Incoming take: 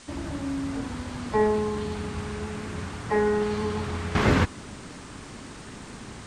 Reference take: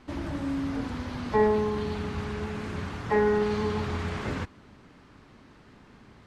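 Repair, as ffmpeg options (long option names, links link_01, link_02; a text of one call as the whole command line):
ffmpeg -i in.wav -af "afwtdn=0.0045,asetnsamples=nb_out_samples=441:pad=0,asendcmd='4.15 volume volume -11.5dB',volume=0dB" out.wav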